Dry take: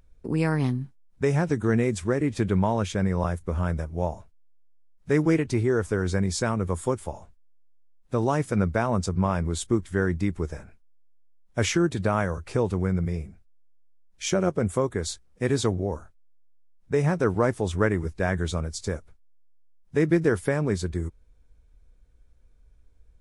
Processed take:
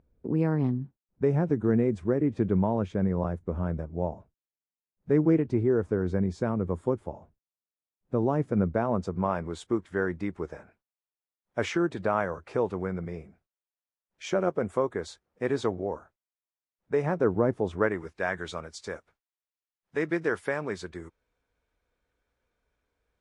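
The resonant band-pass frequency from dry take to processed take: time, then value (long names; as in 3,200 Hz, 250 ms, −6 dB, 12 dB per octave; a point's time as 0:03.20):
resonant band-pass, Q 0.54
0:08.60 290 Hz
0:09.47 790 Hz
0:17.03 790 Hz
0:17.44 270 Hz
0:18.07 1,400 Hz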